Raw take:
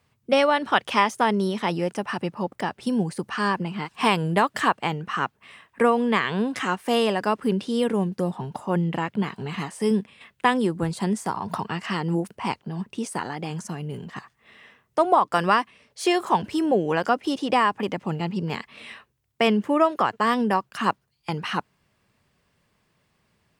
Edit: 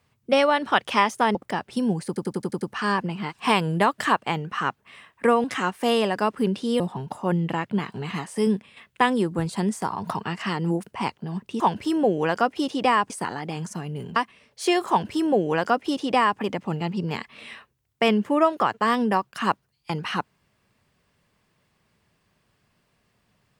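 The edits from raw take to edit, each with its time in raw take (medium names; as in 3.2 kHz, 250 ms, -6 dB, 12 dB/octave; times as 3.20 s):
1.35–2.45 s: delete
3.17 s: stutter 0.09 s, 7 plays
6.00–6.49 s: delete
7.85–8.24 s: delete
14.10–15.55 s: delete
16.28–17.78 s: copy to 13.04 s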